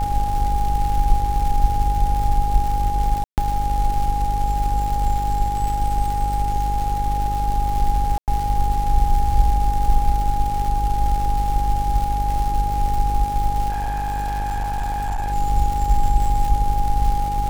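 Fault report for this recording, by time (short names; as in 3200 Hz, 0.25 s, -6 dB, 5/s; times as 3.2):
buzz 50 Hz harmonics 12 -24 dBFS
crackle 310/s -26 dBFS
tone 820 Hz -22 dBFS
3.24–3.38 gap 0.138 s
8.18–8.28 gap 98 ms
13.69–15.33 clipped -20 dBFS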